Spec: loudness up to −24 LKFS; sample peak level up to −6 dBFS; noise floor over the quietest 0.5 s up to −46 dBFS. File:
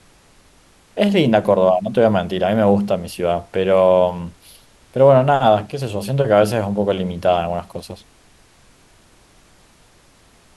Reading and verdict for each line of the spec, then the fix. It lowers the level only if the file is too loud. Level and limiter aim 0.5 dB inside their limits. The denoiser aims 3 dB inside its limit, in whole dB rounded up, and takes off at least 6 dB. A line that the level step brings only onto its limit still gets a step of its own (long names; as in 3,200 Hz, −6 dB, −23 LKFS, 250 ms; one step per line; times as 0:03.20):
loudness −17.0 LKFS: out of spec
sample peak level −1.5 dBFS: out of spec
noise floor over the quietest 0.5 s −52 dBFS: in spec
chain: level −7.5 dB